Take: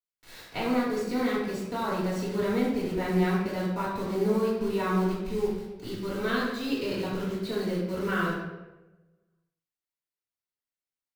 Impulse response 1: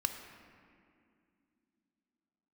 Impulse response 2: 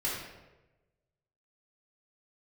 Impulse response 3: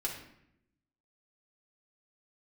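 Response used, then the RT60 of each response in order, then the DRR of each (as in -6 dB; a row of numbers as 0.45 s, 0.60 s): 2; 2.4 s, 1.1 s, 0.75 s; 5.5 dB, -8.5 dB, -2.5 dB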